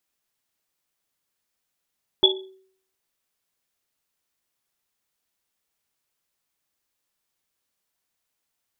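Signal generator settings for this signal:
drum after Risset, pitch 380 Hz, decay 0.59 s, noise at 3,400 Hz, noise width 130 Hz, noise 50%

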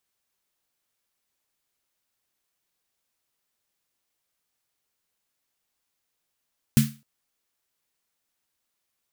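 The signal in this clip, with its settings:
synth snare length 0.26 s, tones 140 Hz, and 220 Hz, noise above 1,400 Hz, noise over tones −10 dB, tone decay 0.29 s, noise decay 0.31 s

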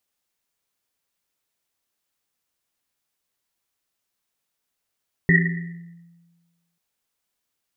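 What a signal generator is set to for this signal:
drum after Risset length 1.49 s, pitch 170 Hz, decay 1.42 s, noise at 1,900 Hz, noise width 190 Hz, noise 45%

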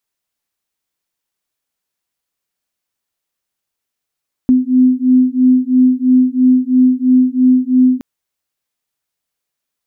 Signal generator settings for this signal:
two tones that beat 253 Hz, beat 3 Hz, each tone −11 dBFS 3.52 s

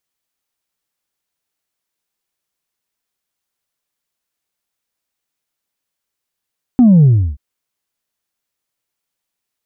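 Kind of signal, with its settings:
bass drop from 260 Hz, over 0.58 s, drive 1 dB, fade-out 0.33 s, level −5 dB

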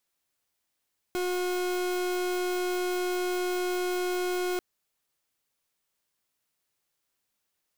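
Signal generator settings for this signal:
pulse wave 361 Hz, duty 39% −29 dBFS 3.44 s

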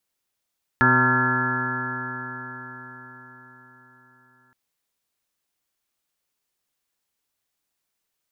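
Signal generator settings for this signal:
stiff-string partials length 3.72 s, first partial 125 Hz, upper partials 1/−5/−14/−14.5/−13/−1/−8/−9/4.5/−6/5.5 dB, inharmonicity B 0.002, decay 4.97 s, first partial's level −23 dB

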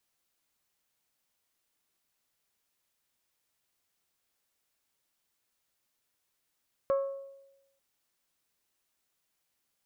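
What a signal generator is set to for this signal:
struck glass bell, lowest mode 549 Hz, decay 0.97 s, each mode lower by 10 dB, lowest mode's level −22.5 dB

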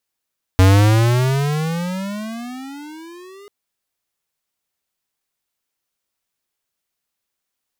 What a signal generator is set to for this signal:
pitch glide with a swell square, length 2.89 s, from 92 Hz, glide +26 semitones, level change −32 dB, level −9 dB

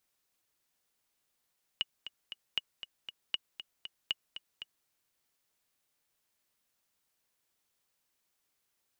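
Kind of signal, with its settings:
click track 235 BPM, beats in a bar 3, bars 4, 2,900 Hz, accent 11.5 dB −17 dBFS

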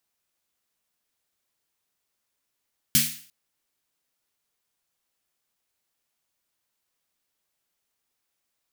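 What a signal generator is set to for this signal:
synth snare length 0.35 s, tones 150 Hz, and 230 Hz, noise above 1,900 Hz, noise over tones 9.5 dB, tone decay 0.37 s, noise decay 0.48 s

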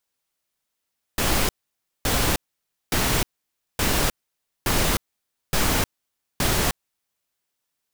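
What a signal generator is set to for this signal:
noise bursts pink, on 0.31 s, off 0.56 s, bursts 7, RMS −21 dBFS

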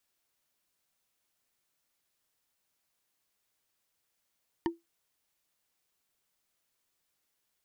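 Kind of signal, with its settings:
struck wood bar, lowest mode 336 Hz, decay 0.18 s, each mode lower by 4 dB, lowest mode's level −23 dB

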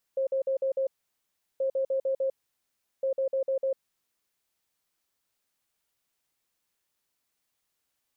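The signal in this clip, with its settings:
beeps in groups sine 535 Hz, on 0.10 s, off 0.05 s, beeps 5, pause 0.73 s, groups 3, −24 dBFS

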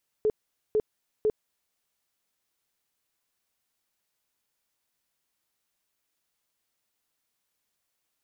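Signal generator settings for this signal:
tone bursts 429 Hz, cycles 21, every 0.50 s, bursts 3, −20 dBFS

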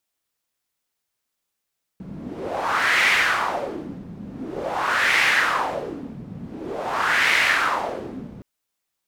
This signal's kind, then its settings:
wind from filtered noise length 6.42 s, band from 180 Hz, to 2,100 Hz, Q 3.1, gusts 3, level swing 18.5 dB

